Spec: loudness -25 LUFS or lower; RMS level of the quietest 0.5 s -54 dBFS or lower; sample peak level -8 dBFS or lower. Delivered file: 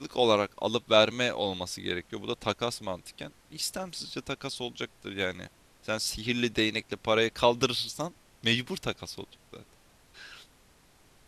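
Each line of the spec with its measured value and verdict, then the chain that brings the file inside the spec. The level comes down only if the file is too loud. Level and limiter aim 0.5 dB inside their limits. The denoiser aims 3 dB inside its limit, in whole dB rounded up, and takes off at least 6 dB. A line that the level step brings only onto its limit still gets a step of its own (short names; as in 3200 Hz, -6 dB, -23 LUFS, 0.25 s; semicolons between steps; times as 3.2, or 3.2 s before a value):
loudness -29.5 LUFS: OK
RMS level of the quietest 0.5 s -61 dBFS: OK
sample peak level -6.0 dBFS: fail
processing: limiter -8.5 dBFS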